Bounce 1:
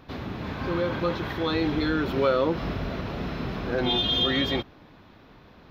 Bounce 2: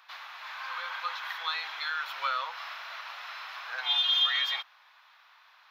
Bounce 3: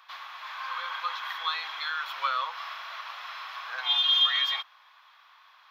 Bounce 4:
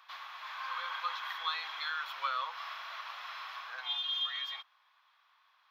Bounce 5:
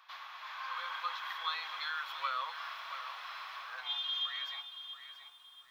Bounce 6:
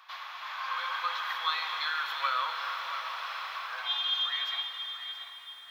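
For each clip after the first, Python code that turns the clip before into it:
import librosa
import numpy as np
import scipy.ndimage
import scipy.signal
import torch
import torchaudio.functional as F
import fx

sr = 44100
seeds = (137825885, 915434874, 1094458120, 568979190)

y1 = scipy.signal.sosfilt(scipy.signal.cheby2(4, 50, 380.0, 'highpass', fs=sr, output='sos'), x)
y2 = fx.small_body(y1, sr, hz=(1100.0, 3300.0), ring_ms=20, db=7)
y3 = fx.rider(y2, sr, range_db=4, speed_s=0.5)
y3 = y3 * 10.0 ** (-8.0 / 20.0)
y4 = fx.echo_crushed(y3, sr, ms=678, feedback_pct=35, bits=10, wet_db=-10.5)
y4 = y4 * 10.0 ** (-1.5 / 20.0)
y5 = fx.rev_plate(y4, sr, seeds[0], rt60_s=4.6, hf_ratio=0.9, predelay_ms=0, drr_db=4.5)
y5 = y5 * 10.0 ** (5.5 / 20.0)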